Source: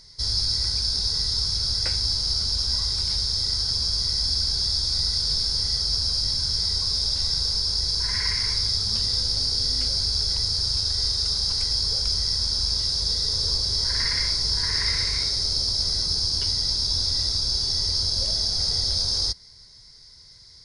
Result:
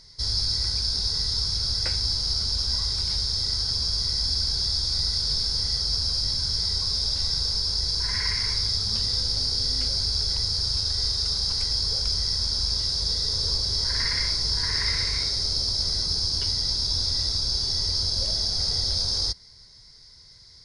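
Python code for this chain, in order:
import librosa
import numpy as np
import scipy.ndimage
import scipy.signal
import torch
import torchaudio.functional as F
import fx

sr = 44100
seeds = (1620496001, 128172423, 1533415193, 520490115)

y = fx.high_shelf(x, sr, hz=8000.0, db=-6.0)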